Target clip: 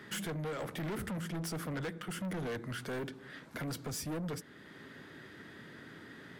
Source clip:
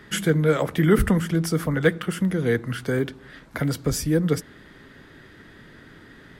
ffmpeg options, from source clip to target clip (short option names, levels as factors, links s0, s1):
-af "highpass=120,alimiter=limit=0.15:level=0:latency=1:release=493,asoftclip=type=tanh:threshold=0.0251,volume=0.708"